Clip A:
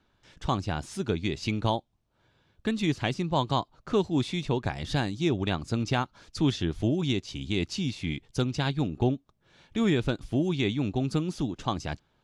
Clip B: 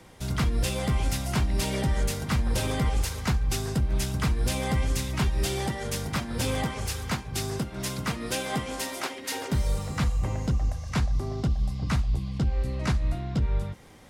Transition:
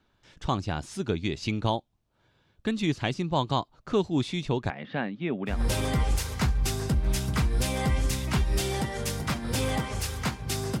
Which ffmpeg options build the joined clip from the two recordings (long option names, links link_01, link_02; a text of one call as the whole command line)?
ffmpeg -i cue0.wav -i cue1.wav -filter_complex "[0:a]asettb=1/sr,asplit=3[link_01][link_02][link_03];[link_01]atrim=end=4.704[link_04];[link_02]atrim=start=4.7:end=5.6,asetpts=PTS-STARTPTS,afade=type=in:duration=0.004:curve=qsin,afade=type=out:start_time=0.896:duration=0.004:curve=qsin,highpass=frequency=180:width=0.5412,highpass=frequency=180:width=1.3066,equalizer=frequency=220:width_type=q:width=4:gain=4,equalizer=frequency=330:width_type=q:width=4:gain=-8,equalizer=frequency=540:width_type=q:width=4:gain=3,equalizer=frequency=890:width_type=q:width=4:gain=-3,equalizer=frequency=1900:width_type=q:width=4:gain=3,lowpass=frequency=2600:width=0.5412,lowpass=frequency=2600:width=1.3066[link_05];[link_03]atrim=start=5.596[link_06];[link_04][link_05]acrossfade=duration=0.004:curve1=hsin:curve2=qsin[link_07];[link_07][link_06]acrossfade=duration=0.004:curve1=qsin:curve2=hsin,apad=whole_dur=10.8,atrim=end=10.8,atrim=end=5.6,asetpts=PTS-STARTPTS[link_08];[1:a]atrim=start=2.32:end=7.66,asetpts=PTS-STARTPTS[link_09];[link_08][link_09]acrossfade=duration=0.14:curve1=tri:curve2=tri" out.wav